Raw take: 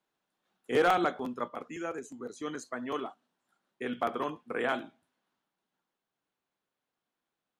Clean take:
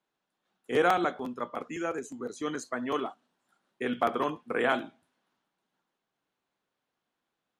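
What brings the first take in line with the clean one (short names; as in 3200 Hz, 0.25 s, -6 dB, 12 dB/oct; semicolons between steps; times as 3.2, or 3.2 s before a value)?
clip repair -17.5 dBFS; gain 0 dB, from 1.48 s +4 dB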